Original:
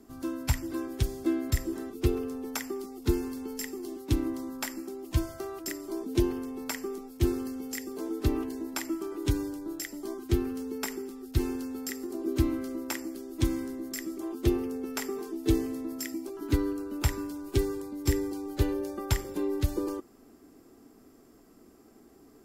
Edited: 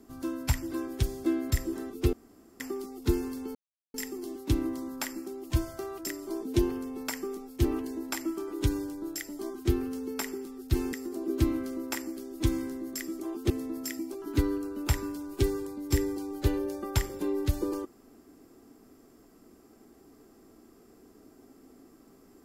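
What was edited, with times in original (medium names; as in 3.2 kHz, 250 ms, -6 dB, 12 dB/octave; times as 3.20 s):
2.13–2.60 s: room tone
3.55 s: insert silence 0.39 s
7.26–8.29 s: delete
11.57–11.91 s: delete
14.48–15.65 s: delete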